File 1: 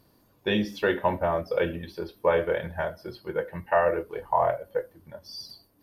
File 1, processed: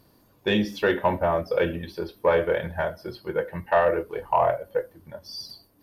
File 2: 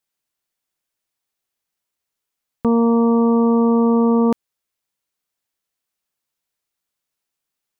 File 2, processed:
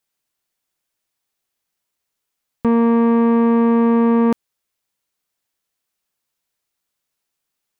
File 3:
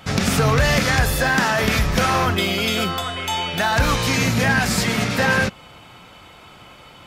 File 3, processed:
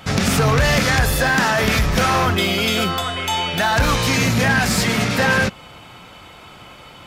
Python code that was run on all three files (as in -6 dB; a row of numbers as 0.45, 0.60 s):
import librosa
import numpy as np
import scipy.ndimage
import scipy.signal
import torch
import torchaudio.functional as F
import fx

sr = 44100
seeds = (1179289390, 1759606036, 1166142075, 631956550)

y = 10.0 ** (-12.0 / 20.0) * np.tanh(x / 10.0 ** (-12.0 / 20.0))
y = y * 10.0 ** (3.0 / 20.0)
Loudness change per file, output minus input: +2.5, +0.5, +1.5 LU